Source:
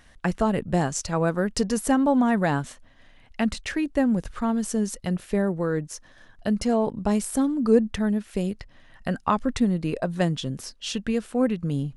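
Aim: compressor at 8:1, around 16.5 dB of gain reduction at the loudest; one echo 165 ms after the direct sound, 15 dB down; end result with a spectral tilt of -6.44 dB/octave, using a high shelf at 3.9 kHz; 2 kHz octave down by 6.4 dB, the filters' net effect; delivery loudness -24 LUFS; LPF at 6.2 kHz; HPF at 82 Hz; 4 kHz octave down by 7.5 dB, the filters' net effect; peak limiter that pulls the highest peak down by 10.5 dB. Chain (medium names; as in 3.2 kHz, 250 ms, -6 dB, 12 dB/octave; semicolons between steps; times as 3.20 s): high-pass 82 Hz; low-pass 6.2 kHz; peaking EQ 2 kHz -6.5 dB; treble shelf 3.9 kHz -6 dB; peaking EQ 4 kHz -3 dB; compression 8:1, threshold -30 dBFS; peak limiter -27.5 dBFS; delay 165 ms -15 dB; trim +13.5 dB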